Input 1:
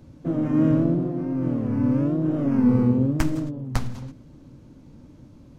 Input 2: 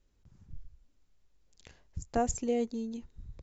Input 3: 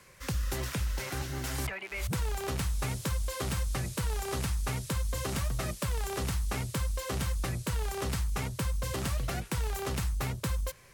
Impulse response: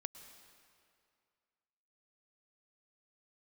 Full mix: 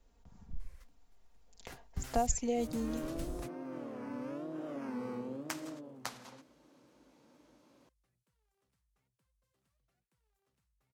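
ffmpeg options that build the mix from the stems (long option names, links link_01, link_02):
-filter_complex "[0:a]highpass=530,adelay=2300,volume=-4.5dB[link_01];[1:a]equalizer=frequency=790:width_type=o:width=1:gain=10.5,aecho=1:1:4.3:0.55,volume=1.5dB,asplit=2[link_02][link_03];[2:a]equalizer=frequency=75:width=3.6:gain=-13.5,adelay=600,volume=-12.5dB[link_04];[link_03]apad=whole_len=508564[link_05];[link_04][link_05]sidechaingate=range=-35dB:threshold=-50dB:ratio=16:detection=peak[link_06];[link_01][link_02][link_06]amix=inputs=3:normalize=0,acrossover=split=150|3000[link_07][link_08][link_09];[link_08]acompressor=threshold=-42dB:ratio=2[link_10];[link_07][link_10][link_09]amix=inputs=3:normalize=0"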